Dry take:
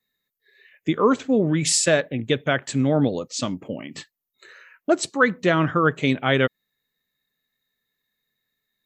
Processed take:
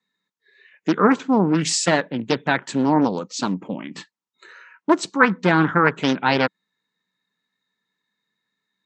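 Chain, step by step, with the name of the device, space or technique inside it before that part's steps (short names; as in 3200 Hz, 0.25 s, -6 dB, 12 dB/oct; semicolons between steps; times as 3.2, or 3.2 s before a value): full-range speaker at full volume (Doppler distortion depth 0.57 ms; speaker cabinet 150–7600 Hz, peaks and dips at 190 Hz +9 dB, 310 Hz +4 dB, 630 Hz -4 dB, 950 Hz +10 dB, 1400 Hz +5 dB)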